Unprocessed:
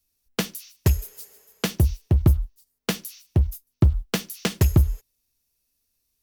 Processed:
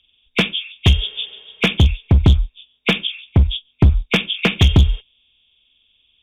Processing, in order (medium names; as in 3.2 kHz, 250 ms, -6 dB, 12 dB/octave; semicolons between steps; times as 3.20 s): knee-point frequency compression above 2.1 kHz 4:1; one-sided clip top -18 dBFS, bottom -11.5 dBFS; trim +8.5 dB